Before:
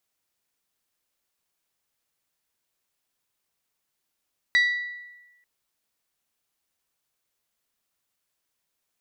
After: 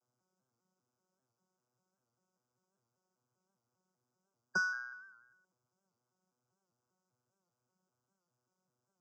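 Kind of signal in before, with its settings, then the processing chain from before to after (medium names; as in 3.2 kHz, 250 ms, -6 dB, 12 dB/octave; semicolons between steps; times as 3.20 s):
glass hit bell, lowest mode 1.95 kHz, decay 1.12 s, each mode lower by 9 dB, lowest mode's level -15 dB
vocoder on a broken chord bare fifth, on B2, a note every 197 ms; brick-wall FIR band-stop 1.6–4.8 kHz; warped record 78 rpm, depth 100 cents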